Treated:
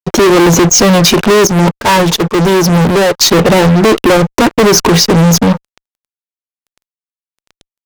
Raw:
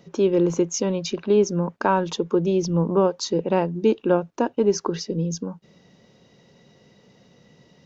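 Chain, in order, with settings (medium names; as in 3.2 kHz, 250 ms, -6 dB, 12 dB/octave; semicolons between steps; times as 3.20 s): fuzz box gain 38 dB, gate -44 dBFS; 1.47–3.21 s: gate -16 dBFS, range -13 dB; trim +8 dB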